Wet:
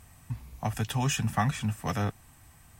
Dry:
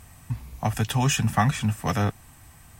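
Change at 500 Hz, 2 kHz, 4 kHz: -5.5 dB, -5.5 dB, -5.5 dB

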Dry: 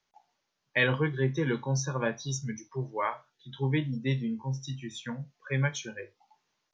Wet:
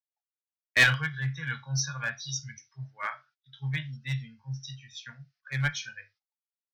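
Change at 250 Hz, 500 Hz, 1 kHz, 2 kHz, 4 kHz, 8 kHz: -9.5 dB, -13.5 dB, -2.5 dB, +5.5 dB, +5.5 dB, no reading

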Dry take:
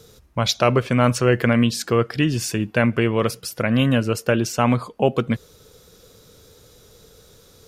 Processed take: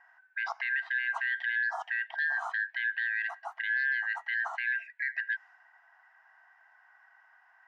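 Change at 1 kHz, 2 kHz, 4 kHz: -14.5 dB, +1.0 dB, -19.0 dB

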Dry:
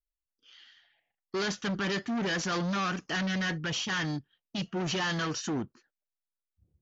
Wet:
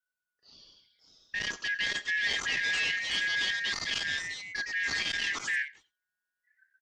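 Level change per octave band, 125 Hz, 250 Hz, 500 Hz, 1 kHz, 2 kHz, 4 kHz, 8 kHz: -19.0 dB, -20.0 dB, -14.5 dB, -10.5 dB, +6.5 dB, +4.0 dB, no reading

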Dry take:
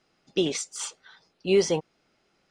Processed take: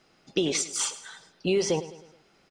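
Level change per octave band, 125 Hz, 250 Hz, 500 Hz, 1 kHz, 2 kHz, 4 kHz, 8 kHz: 0.0 dB, -1.0 dB, -2.5 dB, +1.0 dB, +1.0 dB, +1.0 dB, +4.0 dB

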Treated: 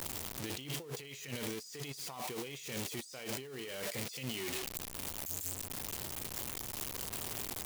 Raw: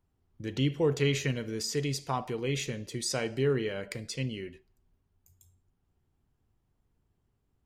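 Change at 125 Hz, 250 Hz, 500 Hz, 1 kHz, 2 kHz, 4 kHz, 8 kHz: -13.0 dB, -10.5 dB, -12.0 dB, -6.5 dB, -5.5 dB, -3.5 dB, 0.0 dB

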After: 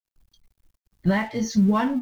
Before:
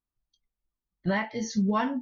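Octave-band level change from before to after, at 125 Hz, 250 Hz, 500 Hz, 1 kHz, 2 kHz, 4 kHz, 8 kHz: +7.5 dB, +7.0 dB, +3.5 dB, +2.5 dB, +2.5 dB, +3.0 dB, no reading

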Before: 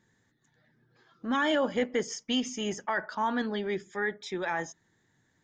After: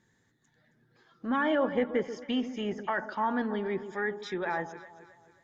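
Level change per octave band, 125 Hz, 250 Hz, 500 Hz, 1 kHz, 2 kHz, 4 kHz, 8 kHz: +0.5 dB, +0.5 dB, +0.5 dB, 0.0 dB, -1.5 dB, -7.5 dB, under -15 dB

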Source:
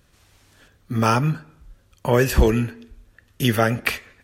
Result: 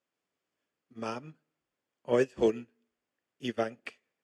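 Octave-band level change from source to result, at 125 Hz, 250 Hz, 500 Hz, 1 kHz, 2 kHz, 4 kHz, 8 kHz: -25.0 dB, -12.5 dB, -7.5 dB, -16.0 dB, -16.5 dB, -16.0 dB, under -15 dB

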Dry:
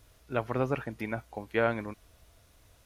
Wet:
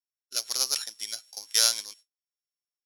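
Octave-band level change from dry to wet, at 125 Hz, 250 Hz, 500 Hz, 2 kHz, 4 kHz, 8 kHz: under -35 dB, under -20 dB, -15.5 dB, -3.5 dB, +24.5 dB, no reading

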